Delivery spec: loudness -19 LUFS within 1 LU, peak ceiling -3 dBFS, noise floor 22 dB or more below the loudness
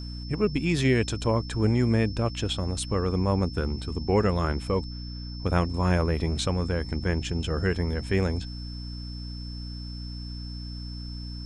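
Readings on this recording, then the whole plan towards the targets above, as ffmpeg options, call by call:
hum 60 Hz; harmonics up to 300 Hz; hum level -34 dBFS; steady tone 5300 Hz; tone level -43 dBFS; loudness -28.0 LUFS; peak -9.5 dBFS; loudness target -19.0 LUFS
-> -af "bandreject=f=60:t=h:w=4,bandreject=f=120:t=h:w=4,bandreject=f=180:t=h:w=4,bandreject=f=240:t=h:w=4,bandreject=f=300:t=h:w=4"
-af "bandreject=f=5.3k:w=30"
-af "volume=9dB,alimiter=limit=-3dB:level=0:latency=1"

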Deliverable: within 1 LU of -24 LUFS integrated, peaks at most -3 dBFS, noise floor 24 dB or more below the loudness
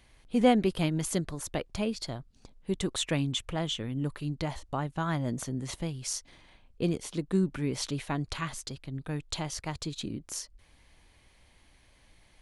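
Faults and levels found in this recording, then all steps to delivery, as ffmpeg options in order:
loudness -32.0 LUFS; peak -10.0 dBFS; loudness target -24.0 LUFS
-> -af "volume=8dB,alimiter=limit=-3dB:level=0:latency=1"

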